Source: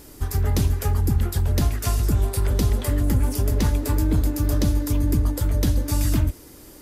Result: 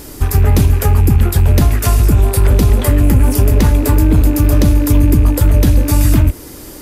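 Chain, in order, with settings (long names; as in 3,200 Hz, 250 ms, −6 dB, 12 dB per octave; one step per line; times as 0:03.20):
loose part that buzzes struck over −29 dBFS, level −34 dBFS
dynamic equaliser 5,200 Hz, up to −5 dB, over −49 dBFS, Q 0.78
boost into a limiter +13.5 dB
level −1 dB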